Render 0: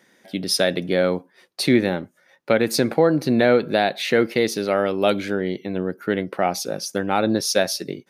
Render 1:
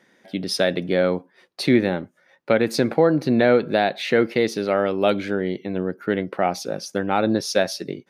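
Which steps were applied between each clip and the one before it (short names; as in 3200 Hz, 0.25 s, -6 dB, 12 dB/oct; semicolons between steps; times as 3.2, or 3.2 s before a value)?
high shelf 6500 Hz -11.5 dB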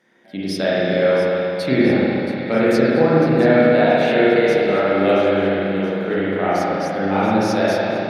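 thinning echo 0.677 s, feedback 57%, level -12 dB; spring tank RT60 2.9 s, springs 31/45 ms, chirp 75 ms, DRR -9 dB; gain -5 dB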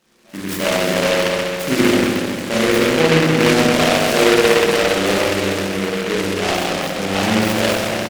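high shelf 5200 Hz +5.5 dB; on a send: early reflections 19 ms -6 dB, 73 ms -6.5 dB; on the sum: noise-modulated delay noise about 1800 Hz, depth 0.17 ms; gain -1.5 dB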